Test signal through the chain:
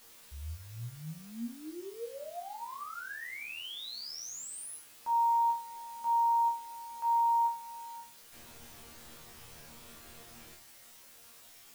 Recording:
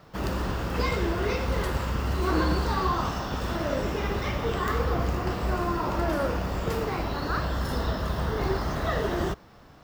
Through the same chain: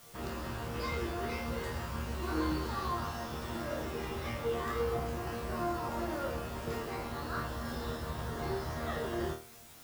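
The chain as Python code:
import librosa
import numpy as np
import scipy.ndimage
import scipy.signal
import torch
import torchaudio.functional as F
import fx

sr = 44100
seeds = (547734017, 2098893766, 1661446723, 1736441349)

p1 = fx.high_shelf(x, sr, hz=12000.0, db=-4.0)
p2 = fx.quant_dither(p1, sr, seeds[0], bits=6, dither='triangular')
p3 = p1 + (p2 * 10.0 ** (-8.5 / 20.0))
y = fx.resonator_bank(p3, sr, root=39, chord='fifth', decay_s=0.35)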